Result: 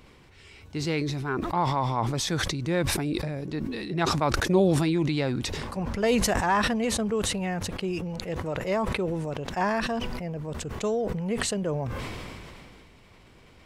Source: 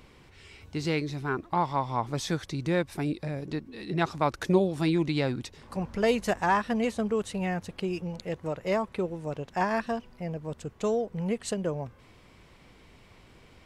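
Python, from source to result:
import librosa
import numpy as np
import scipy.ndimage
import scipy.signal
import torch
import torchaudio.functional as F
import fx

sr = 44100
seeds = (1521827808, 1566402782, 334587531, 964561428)

y = fx.sustainer(x, sr, db_per_s=22.0)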